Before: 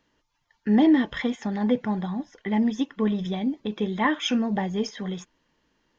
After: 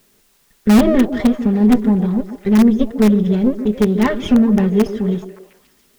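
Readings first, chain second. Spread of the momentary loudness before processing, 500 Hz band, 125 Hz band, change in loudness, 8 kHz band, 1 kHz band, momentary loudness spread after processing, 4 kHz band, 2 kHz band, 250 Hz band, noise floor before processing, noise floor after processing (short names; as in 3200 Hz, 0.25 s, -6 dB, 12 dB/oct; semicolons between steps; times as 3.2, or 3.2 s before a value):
12 LU, +11.0 dB, +12.5 dB, +10.5 dB, n/a, +4.0 dB, 8 LU, +1.5 dB, +3.5 dB, +10.5 dB, -74 dBFS, -57 dBFS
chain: minimum comb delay 4.9 ms; LPF 2300 Hz 6 dB/oct; resonant low shelf 560 Hz +7.5 dB, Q 1.5; in parallel at -10 dB: wrapped overs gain 8.5 dB; on the sum: requantised 10-bit, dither triangular; on a send: delay with a stepping band-pass 0.142 s, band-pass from 320 Hz, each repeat 0.7 oct, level -8.5 dB; on the sum: gain +2 dB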